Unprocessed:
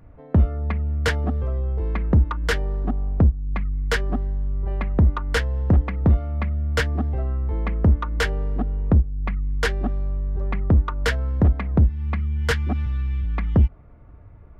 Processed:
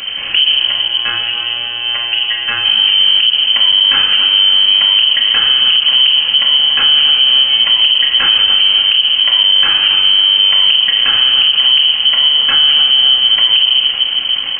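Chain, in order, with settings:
linear delta modulator 32 kbit/s, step −31.5 dBFS
parametric band 78 Hz +4 dB 0.36 octaves
downward compressor 2.5 to 1, threshold −24 dBFS, peak gain reduction 10 dB
0:00.52–0:02.65: phases set to zero 120 Hz
delay with a high-pass on its return 278 ms, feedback 58%, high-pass 1,700 Hz, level −8.5 dB
convolution reverb RT60 2.0 s, pre-delay 3 ms, DRR −2.5 dB
voice inversion scrambler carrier 3,100 Hz
boost into a limiter +11 dB
level −1 dB

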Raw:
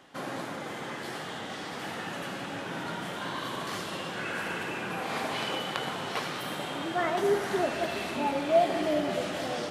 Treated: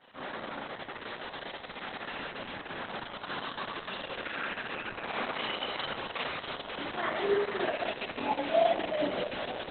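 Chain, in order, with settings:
low-shelf EQ 160 Hz −10.5 dB
reversed playback
upward compression, threshold −38 dBFS
reversed playback
four-comb reverb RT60 0.35 s, combs from 28 ms, DRR −4.5 dB
level −7 dB
Opus 6 kbit/s 48,000 Hz

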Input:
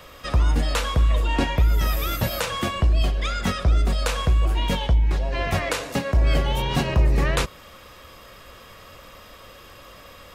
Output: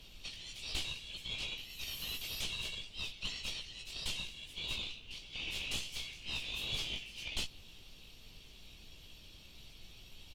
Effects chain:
high-shelf EQ 4,100 Hz −6 dB
0:04.80–0:07.14: flutter between parallel walls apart 4.9 metres, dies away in 0.3 s
ring modulation 540 Hz
random phases in short frames
Butterworth high-pass 2,700 Hz 48 dB per octave
double-tracking delay 16 ms −3.5 dB
tube saturation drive 30 dB, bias 0.35
background noise pink −71 dBFS
spectral tilt −3 dB per octave
level +5 dB

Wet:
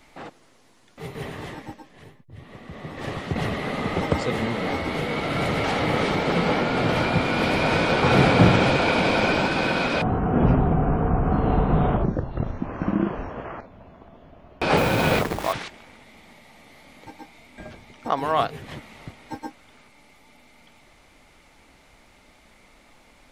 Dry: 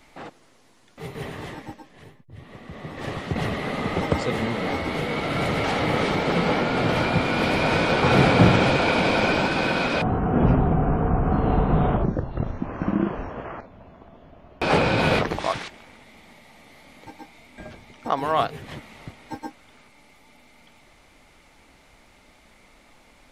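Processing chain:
0:14.77–0:15.53: hold until the input has moved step −29 dBFS

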